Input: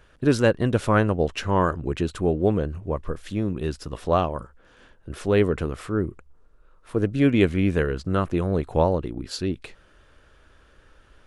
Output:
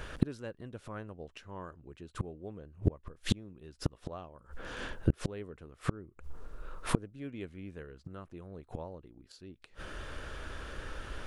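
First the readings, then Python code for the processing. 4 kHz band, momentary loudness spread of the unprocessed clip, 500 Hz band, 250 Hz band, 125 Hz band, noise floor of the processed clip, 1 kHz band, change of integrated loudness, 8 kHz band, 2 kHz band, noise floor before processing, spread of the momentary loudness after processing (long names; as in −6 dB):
−9.5 dB, 10 LU, −20.0 dB, −15.0 dB, −12.0 dB, −65 dBFS, −18.0 dB, −16.0 dB, −8.0 dB, −13.5 dB, −56 dBFS, 17 LU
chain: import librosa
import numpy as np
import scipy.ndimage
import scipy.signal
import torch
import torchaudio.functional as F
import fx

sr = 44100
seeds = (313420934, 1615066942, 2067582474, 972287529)

y = fx.gate_flip(x, sr, shuts_db=-25.0, range_db=-36)
y = F.gain(torch.from_numpy(y), 12.5).numpy()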